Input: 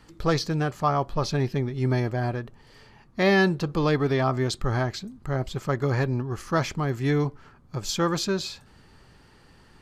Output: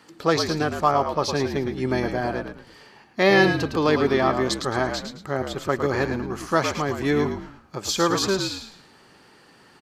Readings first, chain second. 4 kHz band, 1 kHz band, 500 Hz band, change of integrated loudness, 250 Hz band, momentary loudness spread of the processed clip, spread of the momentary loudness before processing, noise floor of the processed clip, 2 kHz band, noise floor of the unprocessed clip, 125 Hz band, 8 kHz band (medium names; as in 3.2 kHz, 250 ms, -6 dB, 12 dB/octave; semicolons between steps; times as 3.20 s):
+5.0 dB, +4.5 dB, +4.5 dB, +3.0 dB, +2.0 dB, 10 LU, 8 LU, -54 dBFS, +4.5 dB, -55 dBFS, -4.5 dB, +5.0 dB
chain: high-pass 240 Hz 12 dB/octave; on a send: frequency-shifting echo 109 ms, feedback 32%, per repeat -53 Hz, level -7 dB; on the sum: trim +4 dB